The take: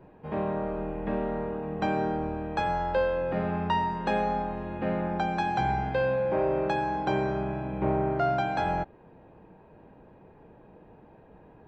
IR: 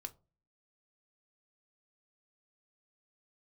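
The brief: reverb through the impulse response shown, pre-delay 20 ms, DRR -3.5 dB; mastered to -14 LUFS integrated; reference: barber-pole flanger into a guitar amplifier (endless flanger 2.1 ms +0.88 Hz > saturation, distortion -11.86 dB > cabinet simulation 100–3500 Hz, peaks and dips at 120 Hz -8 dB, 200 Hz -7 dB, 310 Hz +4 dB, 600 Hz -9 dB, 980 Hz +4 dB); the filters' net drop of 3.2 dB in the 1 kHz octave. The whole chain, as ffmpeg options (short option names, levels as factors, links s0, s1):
-filter_complex "[0:a]equalizer=f=1000:t=o:g=-4.5,asplit=2[s0][s1];[1:a]atrim=start_sample=2205,adelay=20[s2];[s1][s2]afir=irnorm=-1:irlink=0,volume=2.37[s3];[s0][s3]amix=inputs=2:normalize=0,asplit=2[s4][s5];[s5]adelay=2.1,afreqshift=0.88[s6];[s4][s6]amix=inputs=2:normalize=1,asoftclip=threshold=0.0596,highpass=100,equalizer=f=120:t=q:w=4:g=-8,equalizer=f=200:t=q:w=4:g=-7,equalizer=f=310:t=q:w=4:g=4,equalizer=f=600:t=q:w=4:g=-9,equalizer=f=980:t=q:w=4:g=4,lowpass=f=3500:w=0.5412,lowpass=f=3500:w=1.3066,volume=7.94"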